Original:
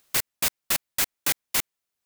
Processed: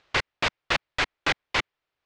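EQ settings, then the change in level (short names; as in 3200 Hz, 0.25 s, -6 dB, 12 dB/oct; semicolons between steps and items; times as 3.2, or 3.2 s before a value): LPF 3600 Hz 12 dB/oct; air absorption 110 m; bell 210 Hz -10 dB 0.64 oct; +8.0 dB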